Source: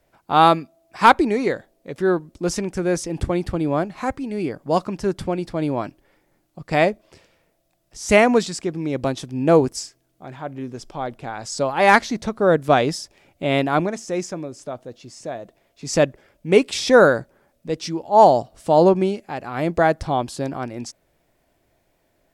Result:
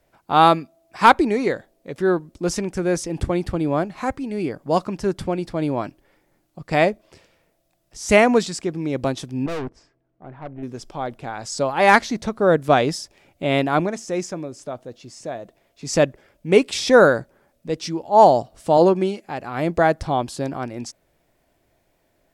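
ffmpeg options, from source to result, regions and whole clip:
-filter_complex "[0:a]asettb=1/sr,asplit=3[s0][s1][s2];[s0]atrim=end=9.464[s3];[s1]atrim=start=9.46:end=10.63,asetpts=PTS-STARTPTS,afade=t=in:d=0.004:c=qsin,afade=t=out:st=1.166:d=0.004:c=qsin,lowpass=1500,aeval=exprs='(tanh(20*val(0)+0.55)-tanh(0.55))/20':c=same[s4];[s2]atrim=start=10.626[s5];[s3][s4]acrossfade=d=0.004:c1=hsin:c2=qsin[s6];[s6][s5]acrossfade=d=0.004:c1=qsin:c2=hsin,asettb=1/sr,asplit=3[s7][s8][s9];[s7]atrim=end=18.774[s10];[s8]atrim=start=18.77:end=19.24,asetpts=PTS-STARTPTS,afade=t=in:d=0.004:c=qsin,afade=t=out:st=0.466:d=0.004:c=qsin,highpass=f=250:p=1,aecho=1:1:5.9:0.32,atrim=end_sample=20727[s11];[s9]atrim=start=19.236[s12];[s10][s11]acrossfade=d=0.004:c1=hsin:c2=qsin[s13];[s13][s12]acrossfade=d=0.004:c1=qsin:c2=hsin"

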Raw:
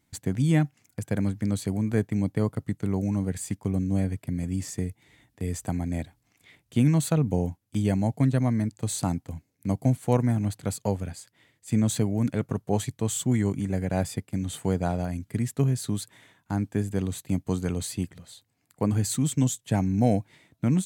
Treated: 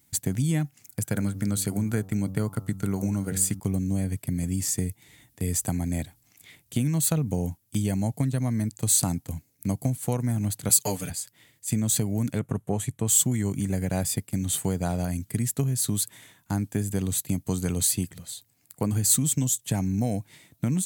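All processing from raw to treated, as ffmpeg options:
-filter_complex "[0:a]asettb=1/sr,asplit=3[s0][s1][s2];[s0]atrim=end=1.044[s3];[s1]atrim=start=1.04:end=3.6,asetpts=PTS-STARTPTS,afade=t=in:d=0.004:c=qsin,afade=t=out:st=2.556:d=0.004:c=qsin,equalizer=f=1400:w=7.5:g=11,bandreject=f=94.92:t=h:w=4,bandreject=f=189.84:t=h:w=4,bandreject=f=284.76:t=h:w=4,bandreject=f=379.68:t=h:w=4,bandreject=f=474.6:t=h:w=4,bandreject=f=569.52:t=h:w=4,bandreject=f=664.44:t=h:w=4,bandreject=f=759.36:t=h:w=4,bandreject=f=854.28:t=h:w=4,bandreject=f=949.2:t=h:w=4,bandreject=f=1044.12:t=h:w=4,bandreject=f=1139.04:t=h:w=4,bandreject=f=1233.96:t=h:w=4,bandreject=f=1328.88:t=h:w=4[s4];[s2]atrim=start=3.596[s5];[s3][s4]acrossfade=d=0.004:c1=hsin:c2=qsin[s6];[s6][s5]acrossfade=d=0.004:c1=qsin:c2=hsin,asettb=1/sr,asplit=3[s7][s8][s9];[s7]atrim=end=10.694[s10];[s8]atrim=start=10.69:end=11.1,asetpts=PTS-STARTPTS,afade=t=in:d=0.004:c=qsin,afade=t=out:st=0.406:d=0.004:c=qsin,highpass=120,tiltshelf=f=1200:g=-4.5,aecho=1:1:6.8:0.97,atrim=end_sample=18081[s11];[s9]atrim=start=11.096[s12];[s10][s11]acrossfade=d=0.004:c1=hsin:c2=qsin[s13];[s13][s12]acrossfade=d=0.004:c1=qsin:c2=hsin,asettb=1/sr,asplit=3[s14][s15][s16];[s14]atrim=end=12.394[s17];[s15]atrim=start=12.39:end=13.07,asetpts=PTS-STARTPTS,afade=t=in:d=0.004:c=qsin,afade=t=out:st=0.676:d=0.004:c=qsin,lowpass=9700,equalizer=f=4900:t=o:w=0.88:g=-13.5[s18];[s16]atrim=start=13.066[s19];[s17][s18]acrossfade=d=0.004:c1=hsin:c2=qsin[s20];[s20][s19]acrossfade=d=0.004:c1=qsin:c2=hsin,equalizer=f=130:w=0.74:g=4,acompressor=threshold=0.0794:ratio=6,aemphasis=mode=production:type=75kf"

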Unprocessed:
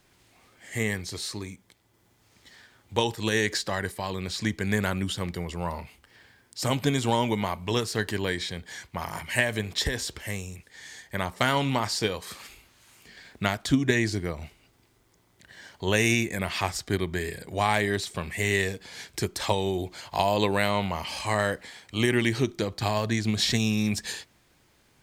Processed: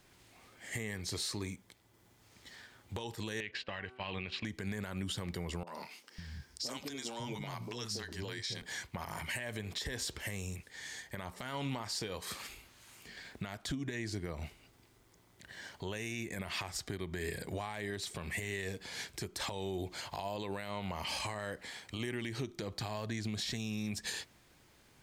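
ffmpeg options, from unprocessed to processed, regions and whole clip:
-filter_complex "[0:a]asettb=1/sr,asplit=3[s0][s1][s2];[s0]atrim=end=3.404[s3];[s1]atrim=start=3.4:end=4.45,asetpts=PTS-STARTPTS,afade=t=in:d=0.004:c=qsin,afade=t=out:st=1.046:d=0.004:c=qsin,agate=range=0.178:threshold=0.0178:ratio=16:release=100:detection=peak,lowpass=f=2700:t=q:w=6,bandreject=f=126.5:t=h:w=4,bandreject=f=253:t=h:w=4,bandreject=f=379.5:t=h:w=4,bandreject=f=506:t=h:w=4,bandreject=f=632.5:t=h:w=4,bandreject=f=759:t=h:w=4,bandreject=f=885.5:t=h:w=4,bandreject=f=1012:t=h:w=4,bandreject=f=1138.5:t=h:w=4,bandreject=f=1265:t=h:w=4,bandreject=f=1391.5:t=h:w=4,bandreject=f=1518:t=h:w=4[s4];[s2]atrim=start=4.446[s5];[s3][s4]acrossfade=d=0.004:c1=hsin:c2=qsin[s6];[s6][s5]acrossfade=d=0.004:c1=qsin:c2=hsin,asettb=1/sr,asplit=3[s7][s8][s9];[s7]atrim=end=5.634[s10];[s8]atrim=start=5.63:end=8.62,asetpts=PTS-STARTPTS,afade=t=in:d=0.004:c=qsin,afade=t=out:st=2.986:d=0.004:c=qsin,equalizer=f=5400:t=o:w=0.62:g=10.5,acompressor=threshold=0.0224:ratio=12:attack=3.2:release=140:knee=1:detection=peak,acrossover=split=190|700[s11][s12][s13];[s13]adelay=40[s14];[s11]adelay=550[s15];[s15][s12][s14]amix=inputs=3:normalize=0,atrim=end_sample=131859[s16];[s9]atrim=start=8.616[s17];[s10][s16]acrossfade=d=0.004:c1=hsin:c2=qsin[s18];[s18][s17]acrossfade=d=0.004:c1=qsin:c2=hsin,acompressor=threshold=0.0282:ratio=6,alimiter=level_in=1.33:limit=0.0631:level=0:latency=1:release=75,volume=0.75,volume=0.891"

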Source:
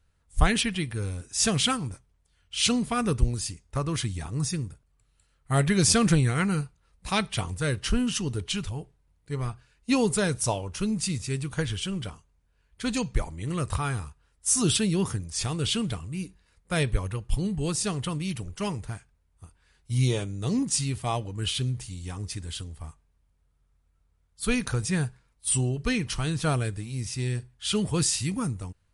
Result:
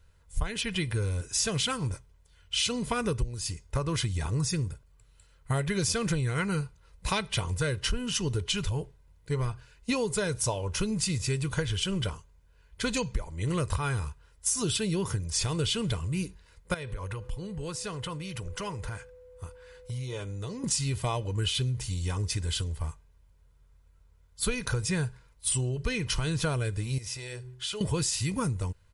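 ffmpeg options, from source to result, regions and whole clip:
-filter_complex "[0:a]asettb=1/sr,asplit=3[s0][s1][s2];[s0]atrim=end=16.744[s3];[s1]atrim=start=16.74:end=20.64,asetpts=PTS-STARTPTS,afade=t=in:d=0.004:c=qsin,afade=t=out:st=3.896:d=0.004:c=qsin,acompressor=threshold=0.0112:ratio=8:attack=3.2:release=140:knee=1:detection=peak,equalizer=f=1300:t=o:w=1.8:g=5.5,aeval=exprs='val(0)+0.00126*sin(2*PI*500*n/s)':c=same[s4];[s2]atrim=start=20.636[s5];[s3][s4]acrossfade=d=0.004:c1=hsin:c2=qsin[s6];[s6][s5]acrossfade=d=0.004:c1=qsin:c2=hsin,asettb=1/sr,asplit=3[s7][s8][s9];[s7]atrim=end=26.984[s10];[s8]atrim=start=26.98:end=27.81,asetpts=PTS-STARTPTS,afade=t=in:d=0.004:c=qsin,afade=t=out:st=0.826:d=0.004:c=qsin,bandreject=f=126.2:t=h:w=4,bandreject=f=252.4:t=h:w=4,bandreject=f=378.6:t=h:w=4,acompressor=threshold=0.0141:ratio=6:attack=3.2:release=140:knee=1:detection=peak,lowshelf=f=380:t=q:w=1.5:g=-7[s11];[s9]atrim=start=27.806[s12];[s10][s11]acrossfade=d=0.004:c1=hsin:c2=qsin[s13];[s13][s12]acrossfade=d=0.004:c1=qsin:c2=hsin,equalizer=f=9000:w=7.8:g=-5.5,aecho=1:1:2:0.43,acompressor=threshold=0.0282:ratio=10,volume=1.88"

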